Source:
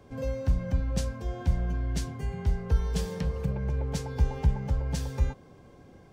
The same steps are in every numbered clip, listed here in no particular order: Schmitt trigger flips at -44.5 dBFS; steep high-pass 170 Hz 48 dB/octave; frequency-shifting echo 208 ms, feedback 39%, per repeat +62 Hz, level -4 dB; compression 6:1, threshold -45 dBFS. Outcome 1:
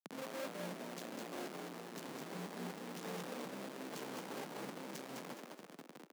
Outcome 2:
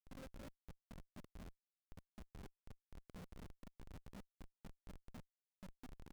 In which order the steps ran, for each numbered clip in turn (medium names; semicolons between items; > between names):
Schmitt trigger > compression > steep high-pass > frequency-shifting echo; frequency-shifting echo > compression > steep high-pass > Schmitt trigger